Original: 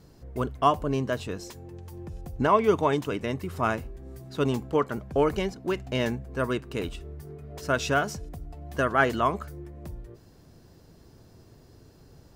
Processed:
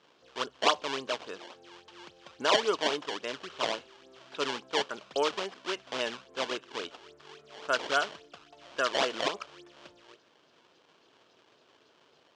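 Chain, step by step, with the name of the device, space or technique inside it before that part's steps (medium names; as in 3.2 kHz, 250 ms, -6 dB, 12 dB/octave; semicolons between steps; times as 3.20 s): circuit-bent sampling toy (decimation with a swept rate 20×, swing 160% 3.6 Hz; cabinet simulation 590–6000 Hz, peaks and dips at 770 Hz -4 dB, 2 kHz -5 dB, 3.1 kHz +6 dB)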